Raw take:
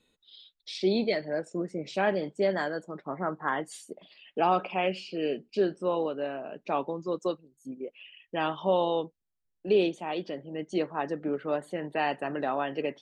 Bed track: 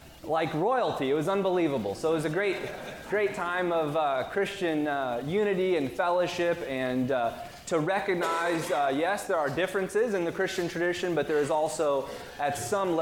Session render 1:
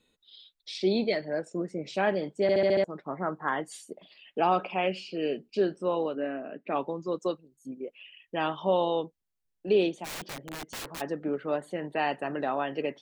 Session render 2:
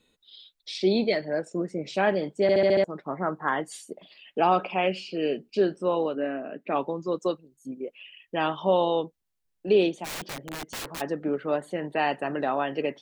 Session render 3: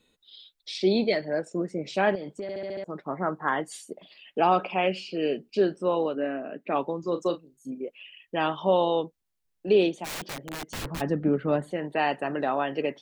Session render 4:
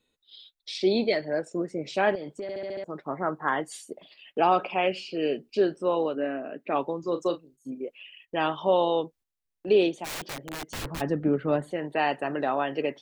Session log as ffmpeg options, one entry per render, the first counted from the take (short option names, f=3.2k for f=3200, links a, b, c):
-filter_complex "[0:a]asplit=3[a][b][c];[a]afade=t=out:st=6.15:d=0.02[d];[b]highpass=150,equalizer=f=270:t=q:w=4:g=7,equalizer=f=910:t=q:w=4:g=-9,equalizer=f=1.9k:t=q:w=4:g=6,lowpass=f=2.7k:w=0.5412,lowpass=f=2.7k:w=1.3066,afade=t=in:st=6.15:d=0.02,afade=t=out:st=6.74:d=0.02[e];[c]afade=t=in:st=6.74:d=0.02[f];[d][e][f]amix=inputs=3:normalize=0,asplit=3[g][h][i];[g]afade=t=out:st=10.04:d=0.02[j];[h]aeval=exprs='(mod(44.7*val(0)+1,2)-1)/44.7':c=same,afade=t=in:st=10.04:d=0.02,afade=t=out:st=11:d=0.02[k];[i]afade=t=in:st=11:d=0.02[l];[j][k][l]amix=inputs=3:normalize=0,asplit=7[m][n][o][p][q][r][s];[m]atrim=end=2.492[t];[n]atrim=start=2.418:end=2.492[u];[o]atrim=start=2.418:end=2.492[v];[p]atrim=start=2.418:end=2.492[w];[q]atrim=start=2.418:end=2.492[x];[r]atrim=start=2.418:end=2.492[y];[s]atrim=start=2.838[z];[t][u]acrossfade=d=0.004:c1=hsin:c2=hsin[aa];[aa][v]acrossfade=d=0.004:c1=hsin:c2=hsin[ab];[ab][w]acrossfade=d=0.004:c1=hsin:c2=hsin[ac];[ac][x]acrossfade=d=0.004:c1=hsin:c2=hsin[ad];[ad][y]acrossfade=d=0.004:c1=hsin:c2=hsin[ae];[ae][z]acrossfade=d=0.004:c1=hsin:c2=hsin"
-af "volume=3dB"
-filter_complex "[0:a]asettb=1/sr,asplit=3[a][b][c];[a]atrim=end=2.154[d];[b]atrim=start=2.15:end=2.86,asetpts=PTS-STARTPTS,afade=t=in:d=0.004:c=qsin,afade=t=out:st=0.706:d=0.004:c=qsin,acompressor=threshold=-31dB:ratio=8:attack=3.2:release=140:knee=1:detection=peak[e];[c]atrim=start=2.856[f];[d][e]acrossfade=d=0.004:c1=hsin:c2=qsin[g];[g][f]acrossfade=d=0.004:c1=qsin:c2=hsin,asettb=1/sr,asplit=3[h][i][j];[h]atrim=end=7.004[k];[i]atrim=start=7:end=7.83,asetpts=PTS-STARTPTS,afade=t=in:d=0.004:c=qsin,afade=t=out:st=0.826:d=0.004:c=qsin,asplit=2[l][m];[m]adelay=35,volume=-10dB[n];[l][n]amix=inputs=2:normalize=0,atrim=end_sample=36603[o];[j]atrim=start=7.826[p];[k][o]acrossfade=d=0.004:c1=hsin:c2=qsin[q];[q][p]acrossfade=d=0.004:c1=qsin:c2=hsin,asettb=1/sr,asplit=3[r][s][t];[r]atrim=end=10.744[u];[s]atrim=start=10.74:end=11.72,asetpts=PTS-STARTPTS,afade=t=in:d=0.004:c=qsin,afade=t=out:st=0.976:d=0.004:c=qsin,bass=f=250:g=13,treble=f=4k:g=-3[v];[t]atrim=start=11.716[w];[u][v]acrossfade=d=0.004:c1=hsin:c2=qsin[x];[x][w]acrossfade=d=0.004:c1=qsin:c2=hsin"
-af "equalizer=f=190:t=o:w=0.32:g=-5.5,agate=range=-7dB:threshold=-53dB:ratio=16:detection=peak"